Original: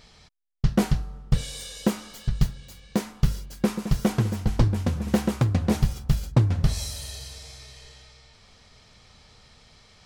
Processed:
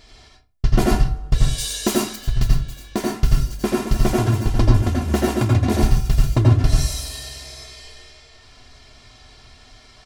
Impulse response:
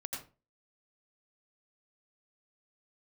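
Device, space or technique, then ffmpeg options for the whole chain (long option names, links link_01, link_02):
microphone above a desk: -filter_complex "[0:a]aecho=1:1:2.9:0.69[link_01];[1:a]atrim=start_sample=2205[link_02];[link_01][link_02]afir=irnorm=-1:irlink=0,asettb=1/sr,asplit=3[link_03][link_04][link_05];[link_03]atrim=end=1.584[link_06];[link_04]atrim=start=1.58:end=2.16,asetpts=PTS-STARTPTS,afade=type=in:duration=0.004:curve=qsin,afade=type=out:start_time=0.576:duration=0.004:curve=qsin,highshelf=frequency=3400:gain=8.5[link_07];[link_05]atrim=start=2.156[link_08];[link_06][link_07]acrossfade=duration=0.004:curve1=hsin:curve2=qsin[link_09];[link_09][link_08]acrossfade=duration=0.004:curve1=qsin:curve2=hsin,volume=5.5dB"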